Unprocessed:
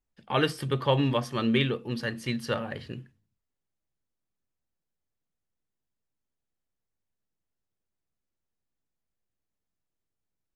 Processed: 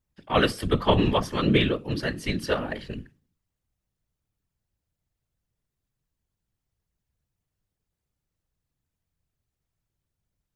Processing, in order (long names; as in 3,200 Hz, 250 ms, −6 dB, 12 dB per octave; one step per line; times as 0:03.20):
random phases in short frames
level +3.5 dB